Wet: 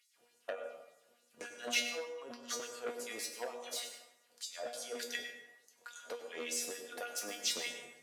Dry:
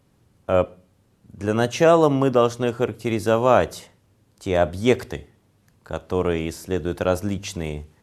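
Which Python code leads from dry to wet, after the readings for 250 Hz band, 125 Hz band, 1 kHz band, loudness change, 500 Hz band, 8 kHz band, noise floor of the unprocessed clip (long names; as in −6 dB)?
−29.0 dB, below −40 dB, −23.5 dB, −18.5 dB, −24.0 dB, −1.5 dB, −62 dBFS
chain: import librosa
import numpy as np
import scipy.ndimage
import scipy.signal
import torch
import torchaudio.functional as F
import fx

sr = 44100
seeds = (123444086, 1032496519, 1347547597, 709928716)

y = fx.tracing_dist(x, sr, depth_ms=0.025)
y = fx.peak_eq(y, sr, hz=1000.0, db=-8.5, octaves=0.9)
y = fx.hum_notches(y, sr, base_hz=50, count=5)
y = fx.over_compress(y, sr, threshold_db=-29.0, ratio=-1.0)
y = fx.filter_lfo_highpass(y, sr, shape='sine', hz=3.4, low_hz=540.0, high_hz=7100.0, q=2.3)
y = fx.comb_fb(y, sr, f0_hz=240.0, decay_s=0.28, harmonics='all', damping=0.0, mix_pct=90)
y = fx.rev_plate(y, sr, seeds[0], rt60_s=0.89, hf_ratio=0.6, predelay_ms=85, drr_db=6.5)
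y = fx.transformer_sat(y, sr, knee_hz=2500.0)
y = y * 10.0 ** (4.0 / 20.0)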